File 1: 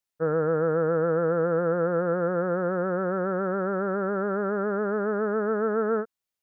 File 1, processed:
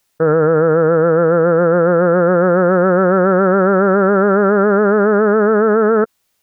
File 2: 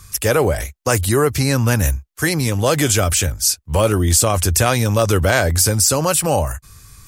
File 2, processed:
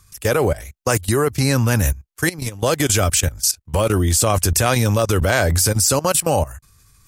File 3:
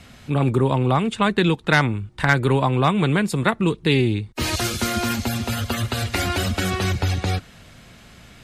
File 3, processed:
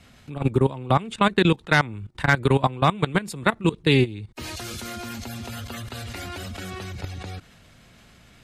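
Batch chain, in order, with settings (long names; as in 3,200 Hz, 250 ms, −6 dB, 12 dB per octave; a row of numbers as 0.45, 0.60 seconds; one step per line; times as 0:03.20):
output level in coarse steps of 18 dB
normalise the peak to −3 dBFS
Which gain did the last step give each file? +24.0, +1.5, +2.0 decibels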